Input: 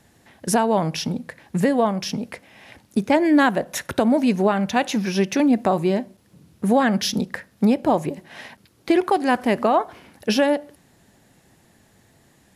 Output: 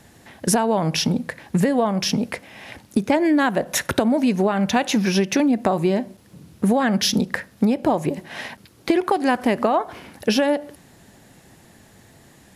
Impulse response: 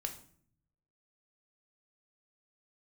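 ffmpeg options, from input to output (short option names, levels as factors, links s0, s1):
-af "acompressor=threshold=0.0794:ratio=6,volume=2.11"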